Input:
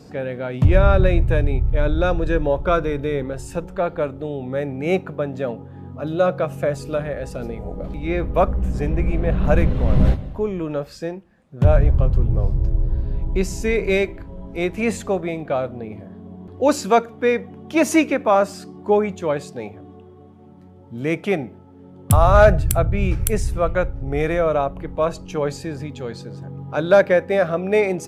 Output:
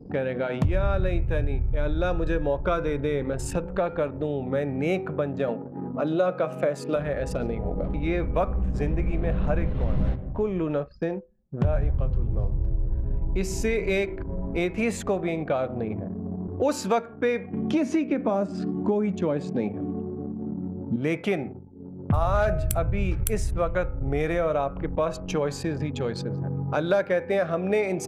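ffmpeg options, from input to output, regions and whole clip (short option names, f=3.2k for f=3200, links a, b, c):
-filter_complex "[0:a]asettb=1/sr,asplit=3[a][b][c];[a]atrim=end=5.484[d];[b]atrim=start=5.48:end=6.96,asetpts=PTS-STARTPTS,afade=t=in:d=0.004:c=qsin,afade=t=out:st=1.476:d=0.004:c=qsin,highpass=f=160:w=0.5412,highpass=f=160:w=1.3066,equalizer=f=620:w=0.34:g=2.5,bandreject=f=1.7k:w=26[e];[c]atrim=start=6.956[f];[d][e]acrossfade=d=0.004:c1=hsin:c2=qsin[g];[g][f]acrossfade=d=0.004:c1=qsin:c2=hsin,asettb=1/sr,asplit=3[h][i][j];[h]atrim=end=9.464[k];[i]atrim=start=9.46:end=11.76,asetpts=PTS-STARTPTS,afade=t=in:d=0.004:c=qsin,afade=t=out:st=2.296:d=0.004:c=qsin,lowpass=8.4k,acrossover=split=2800[l][m];[m]acompressor=threshold=-49dB:ratio=4:attack=1:release=60[n];[l][n]amix=inputs=2:normalize=0[o];[j]atrim=start=11.756[p];[k][o]acrossfade=d=0.004:c1=hsin:c2=qsin[q];[q][p]acrossfade=d=0.004:c1=qsin:c2=hsin,asettb=1/sr,asplit=3[r][s][t];[r]atrim=end=17.534[u];[s]atrim=start=17.53:end=20.96,asetpts=PTS-STARTPTS,afade=t=in:d=0.004:c=qsin,afade=t=out:st=3.426:d=0.004:c=qsin,lowpass=10k,equalizer=f=230:t=o:w=1.4:g=11.5,acrossover=split=730|5600[v][w][x];[v]acompressor=threshold=-16dB:ratio=4[y];[w]acompressor=threshold=-31dB:ratio=4[z];[x]acompressor=threshold=-53dB:ratio=4[aa];[y][z][aa]amix=inputs=3:normalize=0[ab];[t]atrim=start=20.956[ac];[u][ab]acrossfade=d=0.004:c1=hsin:c2=qsin[ad];[ad][ac]acrossfade=d=0.004:c1=qsin:c2=hsin,asettb=1/sr,asplit=3[ae][af][ag];[ae]atrim=end=21.464[ah];[af]atrim=start=21.46:end=22.14,asetpts=PTS-STARTPTS,afade=t=in:d=0.004:c=qsin,afade=t=out:st=0.676:d=0.004:c=qsin,lowpass=f=2k:w=0.5412,lowpass=f=2k:w=1.3066,bandreject=f=55.52:t=h:w=4,bandreject=f=111.04:t=h:w=4,bandreject=f=166.56:t=h:w=4,bandreject=f=222.08:t=h:w=4,bandreject=f=277.6:t=h:w=4,bandreject=f=333.12:t=h:w=4,bandreject=f=388.64:t=h:w=4,bandreject=f=444.16:t=h:w=4,bandreject=f=499.68:t=h:w=4,bandreject=f=555.2:t=h:w=4,bandreject=f=610.72:t=h:w=4,bandreject=f=666.24:t=h:w=4,bandreject=f=721.76:t=h:w=4,bandreject=f=777.28:t=h:w=4,bandreject=f=832.8:t=h:w=4,bandreject=f=888.32:t=h:w=4,bandreject=f=943.84:t=h:w=4,bandreject=f=999.36:t=h:w=4,bandreject=f=1.05488k:t=h:w=4,bandreject=f=1.1104k:t=h:w=4,bandreject=f=1.16592k:t=h:w=4,bandreject=f=1.22144k:t=h:w=4,bandreject=f=1.27696k:t=h:w=4,bandreject=f=1.33248k:t=h:w=4,bandreject=f=1.388k:t=h:w=4,bandreject=f=1.44352k:t=h:w=4,bandreject=f=1.49904k:t=h:w=4,bandreject=f=1.55456k:t=h:w=4,bandreject=f=1.61008k:t=h:w=4,bandreject=f=1.6656k:t=h:w=4[ai];[ag]atrim=start=22.136[aj];[ah][ai]acrossfade=d=0.004:c1=hsin:c2=qsin[ak];[ak][aj]acrossfade=d=0.004:c1=qsin:c2=hsin,bandreject=f=126.7:t=h:w=4,bandreject=f=253.4:t=h:w=4,bandreject=f=380.1:t=h:w=4,bandreject=f=506.8:t=h:w=4,bandreject=f=633.5:t=h:w=4,bandreject=f=760.2:t=h:w=4,bandreject=f=886.9:t=h:w=4,bandreject=f=1.0136k:t=h:w=4,bandreject=f=1.1403k:t=h:w=4,bandreject=f=1.267k:t=h:w=4,bandreject=f=1.3937k:t=h:w=4,bandreject=f=1.5204k:t=h:w=4,bandreject=f=1.6471k:t=h:w=4,bandreject=f=1.7738k:t=h:w=4,bandreject=f=1.9005k:t=h:w=4,bandreject=f=2.0272k:t=h:w=4,bandreject=f=2.1539k:t=h:w=4,bandreject=f=2.2806k:t=h:w=4,bandreject=f=2.4073k:t=h:w=4,bandreject=f=2.534k:t=h:w=4,anlmdn=0.631,acompressor=threshold=-32dB:ratio=3,volume=6.5dB"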